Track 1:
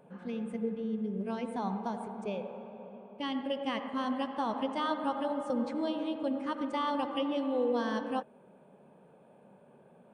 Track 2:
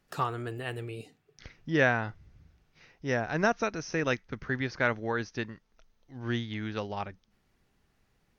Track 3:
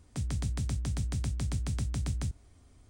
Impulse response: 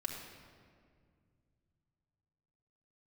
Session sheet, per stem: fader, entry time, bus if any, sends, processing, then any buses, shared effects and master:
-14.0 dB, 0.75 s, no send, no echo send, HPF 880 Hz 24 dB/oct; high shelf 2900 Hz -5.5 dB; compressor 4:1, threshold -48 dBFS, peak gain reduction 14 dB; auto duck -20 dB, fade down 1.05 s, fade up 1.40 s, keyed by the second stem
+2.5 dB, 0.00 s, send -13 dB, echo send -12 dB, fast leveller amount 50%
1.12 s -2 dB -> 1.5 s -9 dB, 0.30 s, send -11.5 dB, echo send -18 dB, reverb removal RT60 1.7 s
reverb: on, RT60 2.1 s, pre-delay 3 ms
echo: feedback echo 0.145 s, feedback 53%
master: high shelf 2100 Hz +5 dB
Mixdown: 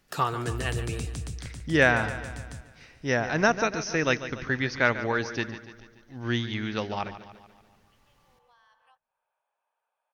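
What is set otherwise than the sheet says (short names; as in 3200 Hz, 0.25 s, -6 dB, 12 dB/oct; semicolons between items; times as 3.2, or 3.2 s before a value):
stem 2: missing fast leveller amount 50%; stem 3: missing reverb removal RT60 1.7 s; reverb return -9.0 dB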